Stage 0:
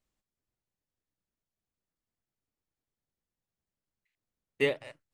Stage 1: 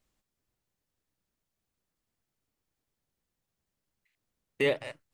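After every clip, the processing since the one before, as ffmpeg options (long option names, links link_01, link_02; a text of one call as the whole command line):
ffmpeg -i in.wav -af "alimiter=limit=-22.5dB:level=0:latency=1:release=15,volume=6dB" out.wav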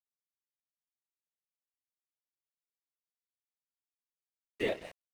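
ffmpeg -i in.wav -af "aecho=1:1:138:0.15,afftfilt=real='hypot(re,im)*cos(2*PI*random(0))':imag='hypot(re,im)*sin(2*PI*random(1))':win_size=512:overlap=0.75,aeval=exprs='sgn(val(0))*max(abs(val(0))-0.00266,0)':channel_layout=same" out.wav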